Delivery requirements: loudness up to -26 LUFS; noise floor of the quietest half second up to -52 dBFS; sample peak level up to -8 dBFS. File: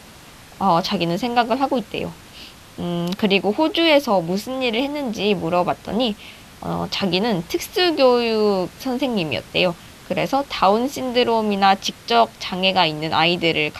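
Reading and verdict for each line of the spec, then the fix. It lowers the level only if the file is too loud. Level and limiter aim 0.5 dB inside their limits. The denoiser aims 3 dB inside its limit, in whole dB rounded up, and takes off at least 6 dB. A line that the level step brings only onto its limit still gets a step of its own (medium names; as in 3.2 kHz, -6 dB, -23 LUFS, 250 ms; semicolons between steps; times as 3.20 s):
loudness -19.5 LUFS: fail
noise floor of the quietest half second -43 dBFS: fail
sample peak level -3.5 dBFS: fail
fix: noise reduction 6 dB, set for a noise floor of -43 dBFS; trim -7 dB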